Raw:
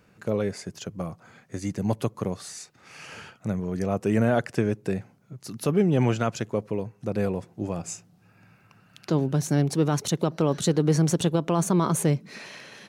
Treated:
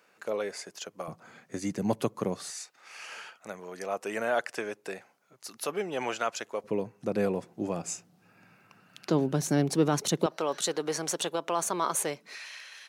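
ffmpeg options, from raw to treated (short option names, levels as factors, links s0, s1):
-af "asetnsamples=n=441:p=0,asendcmd='1.08 highpass f 190;2.5 highpass f 650;6.64 highpass f 200;10.26 highpass f 610;12.35 highpass f 1400',highpass=540"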